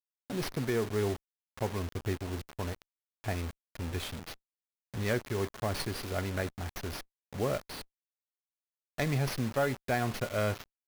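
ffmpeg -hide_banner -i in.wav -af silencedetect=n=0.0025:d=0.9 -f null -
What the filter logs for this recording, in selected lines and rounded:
silence_start: 7.83
silence_end: 8.98 | silence_duration: 1.15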